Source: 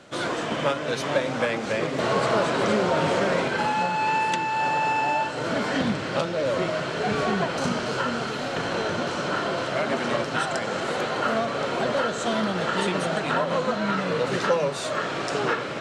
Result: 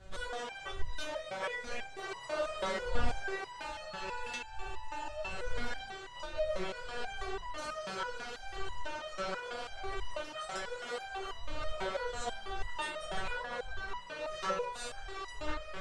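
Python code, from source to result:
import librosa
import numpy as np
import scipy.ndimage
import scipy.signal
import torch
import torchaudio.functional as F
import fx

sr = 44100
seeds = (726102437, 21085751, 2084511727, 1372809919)

y = fx.dmg_wind(x, sr, seeds[0], corner_hz=87.0, level_db=-28.0)
y = fx.peak_eq(y, sr, hz=230.0, db=-12.0, octaves=1.1)
y = fx.resonator_held(y, sr, hz=6.1, low_hz=190.0, high_hz=990.0)
y = F.gain(torch.from_numpy(y), 3.0).numpy()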